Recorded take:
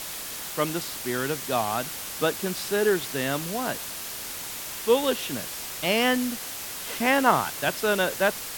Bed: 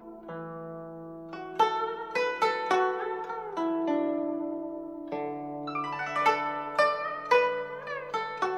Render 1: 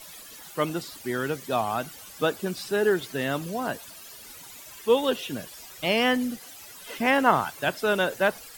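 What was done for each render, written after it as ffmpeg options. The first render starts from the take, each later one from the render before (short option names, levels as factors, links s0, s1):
-af "afftdn=nr=14:nf=-36"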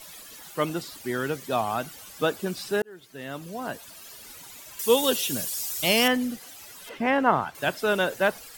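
-filter_complex "[0:a]asettb=1/sr,asplit=3[s0][s1][s2];[s0]atrim=end=4.794[s3];[s1]atrim=start=4.79:end=6.08,asetpts=PTS-STARTPTS,afade=t=in:d=0.004:c=qsin,afade=t=out:st=1.286:d=0.004:c=qsin,bass=f=250:g=2,treble=f=4000:g=15[s4];[s2]atrim=start=6.076[s5];[s3][s4]acrossfade=d=0.004:c1=hsin:c2=qsin[s6];[s6][s5]acrossfade=d=0.004:c1=qsin:c2=hsin,asettb=1/sr,asplit=3[s7][s8][s9];[s7]atrim=end=6.894[s10];[s8]atrim=start=6.89:end=7.55,asetpts=PTS-STARTPTS,afade=t=in:d=0.004:c=qsin,afade=t=out:st=0.656:d=0.004:c=qsin,lowpass=f=1800:p=1[s11];[s9]atrim=start=7.546[s12];[s10][s11]acrossfade=d=0.004:c1=hsin:c2=qsin[s13];[s13][s12]acrossfade=d=0.004:c1=qsin:c2=hsin,asplit=2[s14][s15];[s14]atrim=end=2.82,asetpts=PTS-STARTPTS,afade=t=out:st=2.816:d=0.004:c=hsin[s16];[s15]atrim=start=2.82,asetpts=PTS-STARTPTS,afade=t=in:d=1.25[s17];[s16][s17]concat=n=2:v=0:a=1"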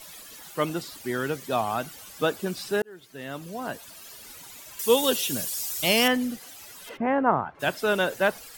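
-filter_complex "[0:a]asplit=3[s0][s1][s2];[s0]afade=t=out:st=6.96:d=0.02[s3];[s1]lowpass=1400,afade=t=in:st=6.96:d=0.02,afade=t=out:st=7.59:d=0.02[s4];[s2]afade=t=in:st=7.59:d=0.02[s5];[s3][s4][s5]amix=inputs=3:normalize=0"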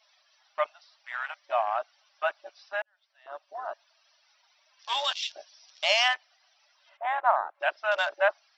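-af "afftfilt=real='re*between(b*sr/4096,560,6000)':imag='im*between(b*sr/4096,560,6000)':win_size=4096:overlap=0.75,afwtdn=0.02"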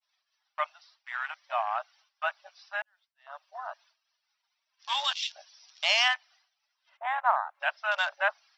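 -af "highpass=f=760:w=0.5412,highpass=f=760:w=1.3066,agate=range=0.0224:threshold=0.00158:ratio=3:detection=peak"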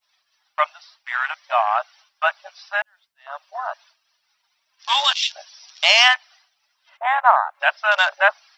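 -af "volume=3.55,alimiter=limit=0.891:level=0:latency=1"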